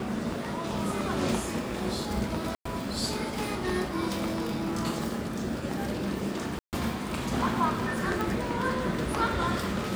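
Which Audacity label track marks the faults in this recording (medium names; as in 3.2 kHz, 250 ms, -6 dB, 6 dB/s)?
2.550000	2.650000	dropout 104 ms
4.090000	4.860000	clipped -26.5 dBFS
6.590000	6.730000	dropout 138 ms
8.210000	8.210000	pop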